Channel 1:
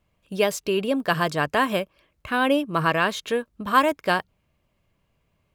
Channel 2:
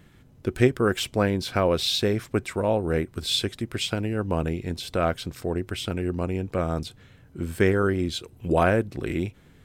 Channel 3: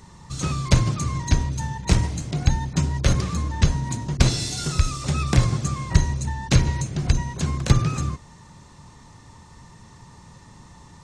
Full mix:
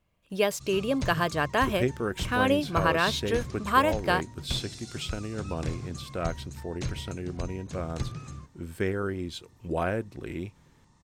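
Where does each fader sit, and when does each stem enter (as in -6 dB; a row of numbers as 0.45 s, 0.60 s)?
-3.5 dB, -8.0 dB, -16.0 dB; 0.00 s, 1.20 s, 0.30 s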